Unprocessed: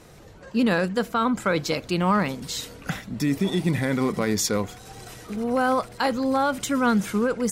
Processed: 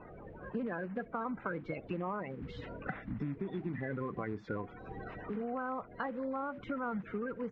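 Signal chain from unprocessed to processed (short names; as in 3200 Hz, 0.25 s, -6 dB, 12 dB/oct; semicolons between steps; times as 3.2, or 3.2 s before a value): bin magnitudes rounded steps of 30 dB; LPF 2100 Hz 24 dB/oct; compressor 6:1, threshold -34 dBFS, peak gain reduction 16 dB; gain -1.5 dB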